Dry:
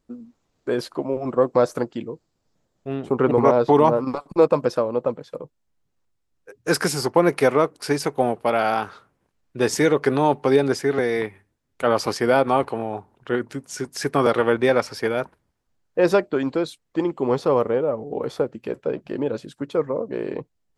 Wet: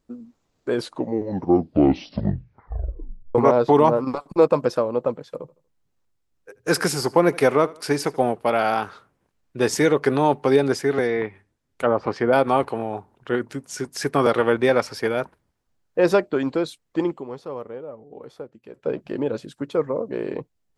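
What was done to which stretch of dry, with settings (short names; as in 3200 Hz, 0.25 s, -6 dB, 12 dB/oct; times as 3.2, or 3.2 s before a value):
0.72 tape stop 2.63 s
5.32–8.21 feedback echo 79 ms, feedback 35%, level -21.5 dB
11.06–12.33 treble ducked by the level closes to 1100 Hz, closed at -16 dBFS
17.12–18.88 dip -13.5 dB, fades 0.12 s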